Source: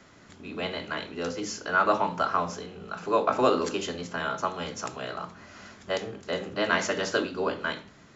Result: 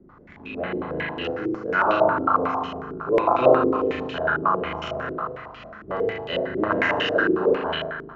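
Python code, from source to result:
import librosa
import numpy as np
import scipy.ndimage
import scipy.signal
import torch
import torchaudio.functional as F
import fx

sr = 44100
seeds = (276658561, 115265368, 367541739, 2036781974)

y = fx.low_shelf(x, sr, hz=160.0, db=10.0)
y = fx.room_flutter(y, sr, wall_m=6.5, rt60_s=1.4)
y = fx.filter_held_lowpass(y, sr, hz=11.0, low_hz=360.0, high_hz=2900.0)
y = y * 10.0 ** (-4.0 / 20.0)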